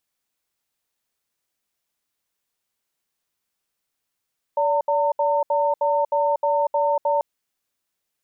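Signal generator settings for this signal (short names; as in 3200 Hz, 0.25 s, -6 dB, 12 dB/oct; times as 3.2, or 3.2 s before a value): cadence 577 Hz, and 909 Hz, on 0.24 s, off 0.07 s, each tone -20 dBFS 2.64 s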